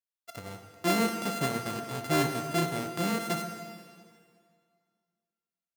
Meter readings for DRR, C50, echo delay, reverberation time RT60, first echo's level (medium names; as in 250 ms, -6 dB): 5.5 dB, 7.0 dB, no echo, 2.1 s, no echo